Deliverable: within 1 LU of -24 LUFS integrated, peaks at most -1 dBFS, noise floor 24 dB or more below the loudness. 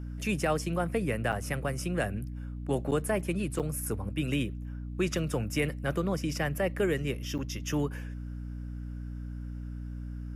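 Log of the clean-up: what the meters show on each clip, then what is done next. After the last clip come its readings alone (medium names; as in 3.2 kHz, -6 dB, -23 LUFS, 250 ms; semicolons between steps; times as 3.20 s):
dropouts 4; longest dropout 7.7 ms; hum 60 Hz; highest harmonic 300 Hz; hum level -36 dBFS; loudness -32.5 LUFS; peak level -17.0 dBFS; loudness target -24.0 LUFS
-> interpolate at 1.32/2.91/3.59/7.38 s, 7.7 ms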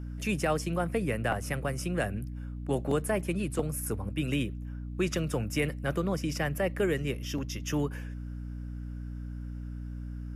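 dropouts 0; hum 60 Hz; highest harmonic 300 Hz; hum level -36 dBFS
-> hum notches 60/120/180/240/300 Hz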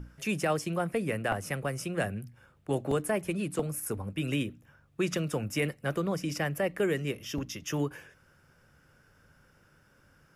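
hum not found; loudness -32.0 LUFS; peak level -16.0 dBFS; loudness target -24.0 LUFS
-> trim +8 dB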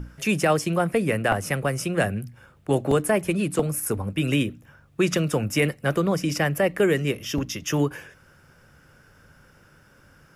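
loudness -24.0 LUFS; peak level -8.0 dBFS; noise floor -56 dBFS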